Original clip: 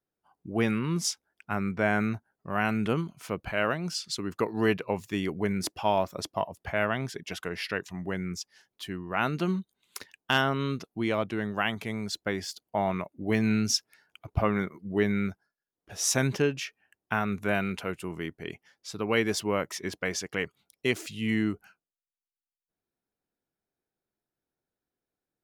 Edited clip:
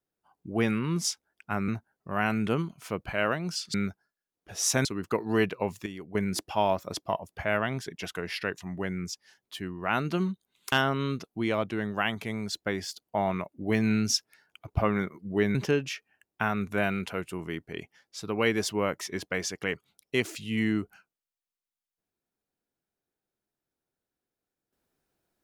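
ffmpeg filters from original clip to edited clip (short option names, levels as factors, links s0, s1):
-filter_complex "[0:a]asplit=8[s0][s1][s2][s3][s4][s5][s6][s7];[s0]atrim=end=1.682[s8];[s1]atrim=start=2.068:end=4.132[s9];[s2]atrim=start=15.148:end=16.262[s10];[s3]atrim=start=4.128:end=5.142[s11];[s4]atrim=start=5.138:end=5.432,asetpts=PTS-STARTPTS,volume=0.299[s12];[s5]atrim=start=5.428:end=10.002[s13];[s6]atrim=start=10.318:end=15.152[s14];[s7]atrim=start=16.258[s15];[s8][s9]acrossfade=d=0.004:c1=hsin:c2=hsin[s16];[s16][s10]acrossfade=d=0.004:c1=hsin:c2=hsin[s17];[s17][s11]acrossfade=d=0.004:c1=hsin:c2=hsin[s18];[s18][s12]acrossfade=d=0.004:c1=hsin:c2=hsin[s19];[s19][s13]acrossfade=d=0.004:c1=hsin:c2=hsin[s20];[s20][s14]acrossfade=d=0.004:c1=hsin:c2=hsin[s21];[s21][s15]acrossfade=d=0.004:c1=hsin:c2=hsin"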